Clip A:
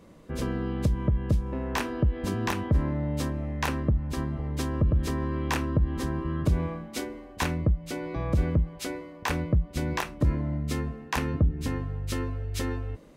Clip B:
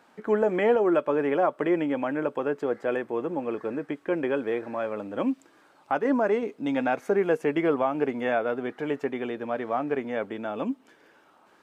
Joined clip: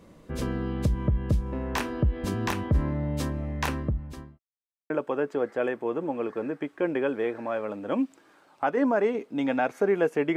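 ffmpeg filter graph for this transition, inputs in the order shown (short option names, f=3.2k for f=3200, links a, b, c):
-filter_complex "[0:a]apad=whole_dur=10.36,atrim=end=10.36,asplit=2[a][b];[a]atrim=end=4.39,asetpts=PTS-STARTPTS,afade=t=out:st=3.66:d=0.73[c];[b]atrim=start=4.39:end=4.9,asetpts=PTS-STARTPTS,volume=0[d];[1:a]atrim=start=2.18:end=7.64,asetpts=PTS-STARTPTS,afade=t=in:d=0.004:c=hsin[e];[c][d][e]concat=n=3:v=0:a=1"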